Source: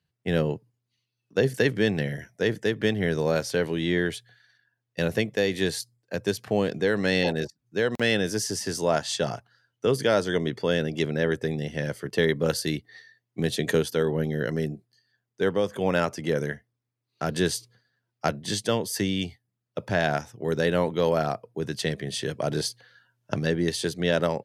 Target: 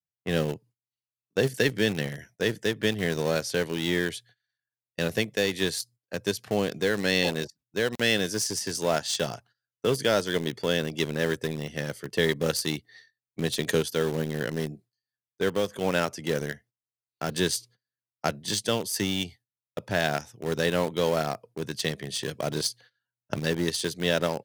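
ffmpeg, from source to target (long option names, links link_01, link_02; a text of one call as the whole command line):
ffmpeg -i in.wav -filter_complex "[0:a]agate=range=-19dB:threshold=-50dB:ratio=16:detection=peak,asplit=2[link_01][link_02];[link_02]aeval=exprs='val(0)*gte(abs(val(0)),0.0708)':channel_layout=same,volume=-7dB[link_03];[link_01][link_03]amix=inputs=2:normalize=0,adynamicequalizer=threshold=0.0112:dfrequency=2500:dqfactor=0.7:tfrequency=2500:tqfactor=0.7:attack=5:release=100:ratio=0.375:range=3:mode=boostabove:tftype=highshelf,volume=-5dB" out.wav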